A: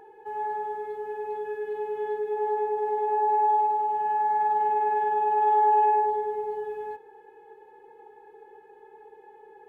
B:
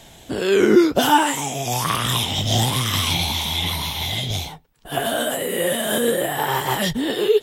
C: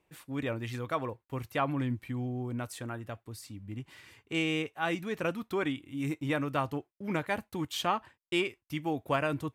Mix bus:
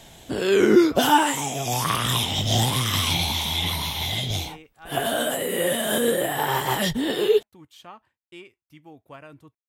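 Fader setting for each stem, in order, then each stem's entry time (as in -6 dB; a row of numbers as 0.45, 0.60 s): off, -2.0 dB, -14.0 dB; off, 0.00 s, 0.00 s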